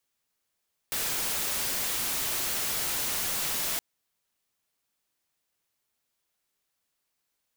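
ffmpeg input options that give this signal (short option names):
-f lavfi -i "anoisesrc=c=white:a=0.0548:d=2.87:r=44100:seed=1"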